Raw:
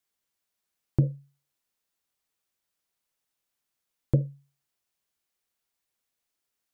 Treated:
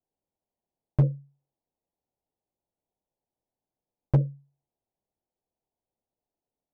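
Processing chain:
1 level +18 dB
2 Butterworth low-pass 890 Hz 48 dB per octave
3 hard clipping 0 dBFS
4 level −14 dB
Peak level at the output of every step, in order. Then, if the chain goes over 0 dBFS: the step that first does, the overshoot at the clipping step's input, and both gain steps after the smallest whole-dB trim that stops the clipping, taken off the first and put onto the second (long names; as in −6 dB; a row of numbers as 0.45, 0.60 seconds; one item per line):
+8.5, +8.5, 0.0, −14.0 dBFS
step 1, 8.5 dB
step 1 +9 dB, step 4 −5 dB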